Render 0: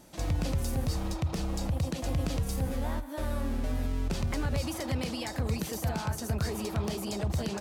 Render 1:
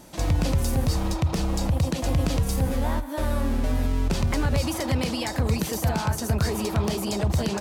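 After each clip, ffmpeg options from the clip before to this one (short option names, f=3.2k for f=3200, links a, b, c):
-af "equalizer=f=970:w=8:g=3,volume=7dB"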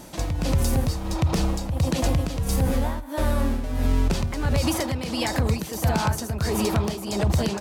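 -af "tremolo=f=1.5:d=0.71,alimiter=limit=-18.5dB:level=0:latency=1:release=91,volume=5.5dB"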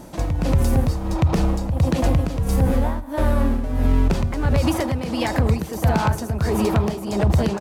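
-filter_complex "[0:a]asplit=2[a][b];[b]adynamicsmooth=sensitivity=2:basefreq=1.7k,volume=2dB[c];[a][c]amix=inputs=2:normalize=0,aecho=1:1:107|214|321:0.075|0.0382|0.0195,volume=-3dB"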